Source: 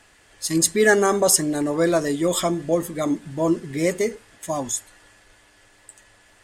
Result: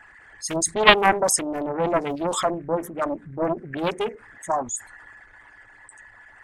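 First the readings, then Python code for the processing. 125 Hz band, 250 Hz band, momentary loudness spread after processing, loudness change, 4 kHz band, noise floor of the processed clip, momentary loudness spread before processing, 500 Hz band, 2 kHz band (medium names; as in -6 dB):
-5.5 dB, -6.0 dB, 14 LU, -1.5 dB, +3.5 dB, -51 dBFS, 11 LU, -3.0 dB, +1.5 dB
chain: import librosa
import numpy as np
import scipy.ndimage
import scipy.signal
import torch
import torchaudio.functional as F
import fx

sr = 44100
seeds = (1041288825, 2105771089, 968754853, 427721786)

y = fx.envelope_sharpen(x, sr, power=2.0)
y = fx.band_shelf(y, sr, hz=1300.0, db=12.0, octaves=1.7)
y = fx.doppler_dist(y, sr, depth_ms=0.99)
y = y * 10.0 ** (-3.5 / 20.0)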